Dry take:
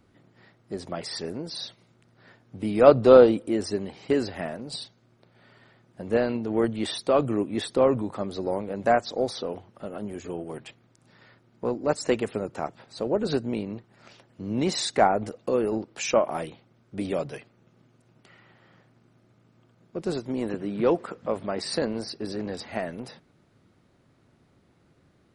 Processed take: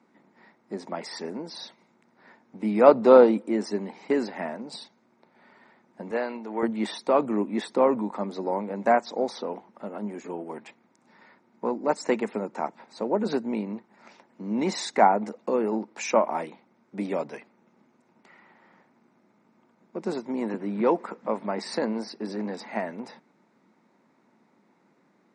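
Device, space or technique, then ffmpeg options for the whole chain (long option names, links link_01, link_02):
television speaker: -filter_complex "[0:a]highpass=frequency=200:width=0.5412,highpass=frequency=200:width=1.3066,equalizer=frequency=210:width_type=q:width=4:gain=7,equalizer=frequency=920:width_type=q:width=4:gain=10,equalizer=frequency=2100:width_type=q:width=4:gain=5,equalizer=frequency=3100:width_type=q:width=4:gain=-8,equalizer=frequency=4500:width_type=q:width=4:gain=-4,lowpass=frequency=7700:width=0.5412,lowpass=frequency=7700:width=1.3066,asettb=1/sr,asplit=3[link_01][link_02][link_03];[link_01]atrim=end=6.114[link_04];[link_02]atrim=start=6.11:end=6.63,asetpts=PTS-STARTPTS,afade=type=in:duration=0.004:curve=qsin,afade=type=out:start_time=0.516:duration=0.004:curve=qsin,highpass=frequency=680:poles=1[link_05];[link_03]atrim=start=6.626[link_06];[link_04][link_05]acrossfade=duration=0.004:curve1=hsin:curve2=qsin[link_07];[link_07][link_06]acrossfade=duration=0.004:curve1=qsin:curve2=hsin,volume=-1.5dB"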